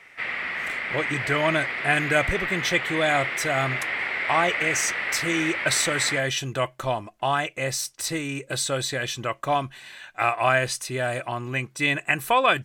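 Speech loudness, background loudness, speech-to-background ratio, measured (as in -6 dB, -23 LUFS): -25.0 LUFS, -26.5 LUFS, 1.5 dB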